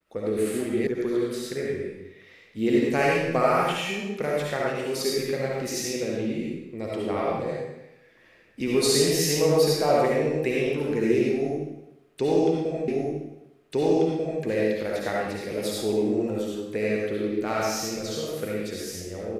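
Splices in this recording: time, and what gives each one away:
0:00.87: cut off before it has died away
0:12.88: the same again, the last 1.54 s

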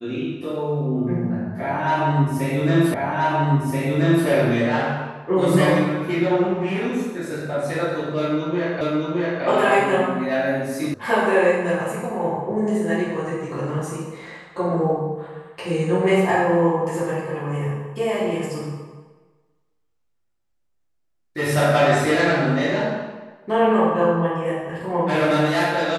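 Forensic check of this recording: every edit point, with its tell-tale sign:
0:02.94: the same again, the last 1.33 s
0:08.81: the same again, the last 0.62 s
0:10.94: cut off before it has died away

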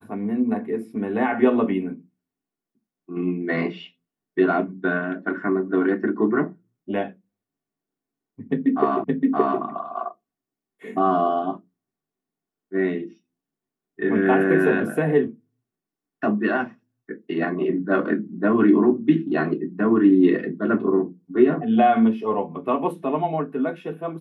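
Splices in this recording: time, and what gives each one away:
0:09.04: the same again, the last 0.57 s

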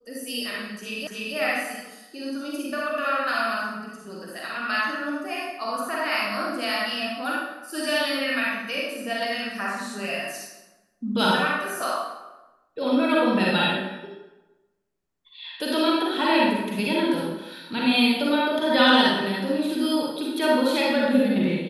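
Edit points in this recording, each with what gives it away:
0:01.07: the same again, the last 0.29 s

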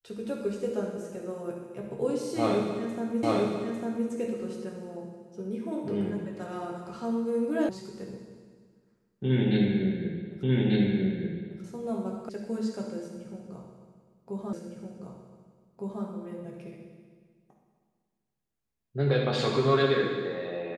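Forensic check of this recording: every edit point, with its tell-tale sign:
0:03.23: the same again, the last 0.85 s
0:07.69: cut off before it has died away
0:10.43: the same again, the last 1.19 s
0:12.29: cut off before it has died away
0:14.53: the same again, the last 1.51 s

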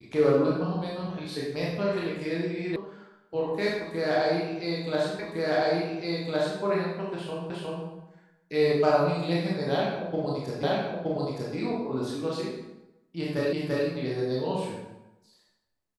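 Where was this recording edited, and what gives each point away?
0:02.76: cut off before it has died away
0:05.19: the same again, the last 1.41 s
0:07.50: the same again, the last 0.36 s
0:10.63: the same again, the last 0.92 s
0:13.53: the same again, the last 0.34 s

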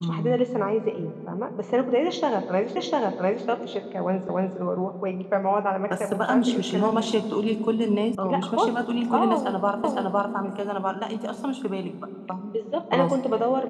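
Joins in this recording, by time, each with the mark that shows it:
0:02.76: the same again, the last 0.7 s
0:04.29: the same again, the last 0.29 s
0:08.15: cut off before it has died away
0:09.84: the same again, the last 0.51 s

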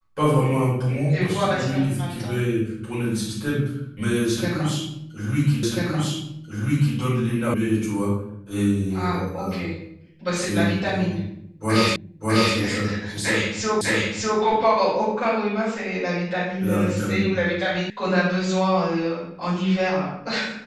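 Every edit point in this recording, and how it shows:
0:05.63: the same again, the last 1.34 s
0:07.54: cut off before it has died away
0:11.96: the same again, the last 0.6 s
0:13.81: the same again, the last 0.6 s
0:17.90: cut off before it has died away

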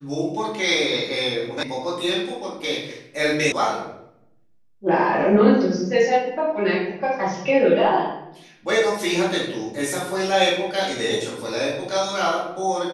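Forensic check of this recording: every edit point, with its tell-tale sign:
0:01.63: cut off before it has died away
0:03.52: cut off before it has died away

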